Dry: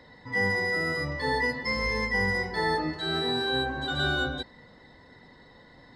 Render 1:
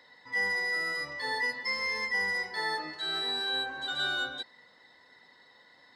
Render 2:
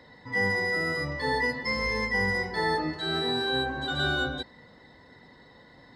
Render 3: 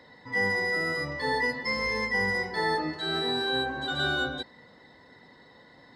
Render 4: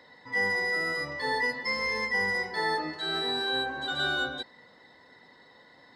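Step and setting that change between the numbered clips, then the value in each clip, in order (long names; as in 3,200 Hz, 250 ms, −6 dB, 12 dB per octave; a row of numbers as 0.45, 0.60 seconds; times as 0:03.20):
high-pass filter, corner frequency: 1,500, 55, 180, 500 Hertz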